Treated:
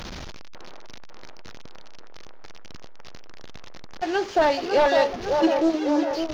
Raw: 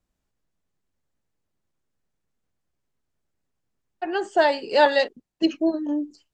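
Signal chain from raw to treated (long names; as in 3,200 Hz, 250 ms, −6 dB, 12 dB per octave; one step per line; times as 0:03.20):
linear delta modulator 32 kbit/s, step −31 dBFS
leveller curve on the samples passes 1
delay with a band-pass on its return 552 ms, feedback 61%, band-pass 710 Hz, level −4 dB
level −2 dB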